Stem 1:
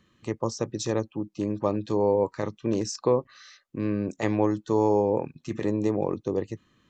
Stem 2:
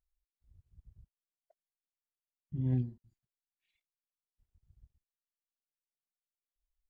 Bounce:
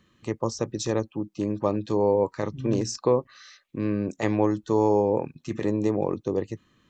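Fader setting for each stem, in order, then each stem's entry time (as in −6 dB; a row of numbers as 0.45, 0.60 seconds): +1.0, −1.5 decibels; 0.00, 0.00 seconds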